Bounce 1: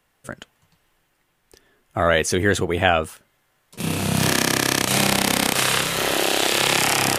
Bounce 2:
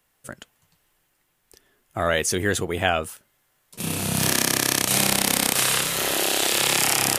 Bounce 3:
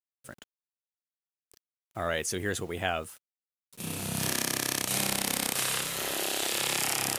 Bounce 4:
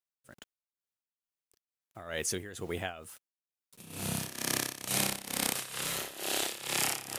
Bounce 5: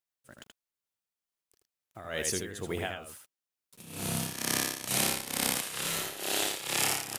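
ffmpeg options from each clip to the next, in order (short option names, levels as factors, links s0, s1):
-af "highshelf=f=6000:g=9.5,volume=0.596"
-af "acrusher=bits=7:mix=0:aa=0.000001,volume=0.376"
-af "tremolo=f=2.2:d=0.84"
-af "aecho=1:1:79:0.596,volume=1.12"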